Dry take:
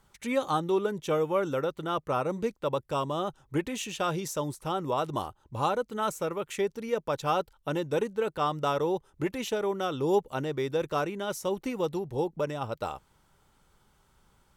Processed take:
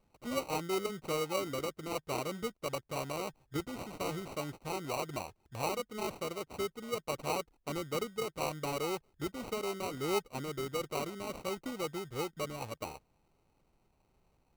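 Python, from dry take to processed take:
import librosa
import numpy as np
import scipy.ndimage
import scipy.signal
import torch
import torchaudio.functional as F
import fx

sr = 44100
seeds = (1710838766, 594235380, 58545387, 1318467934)

y = fx.sample_hold(x, sr, seeds[0], rate_hz=1700.0, jitter_pct=0)
y = y * librosa.db_to_amplitude(-7.5)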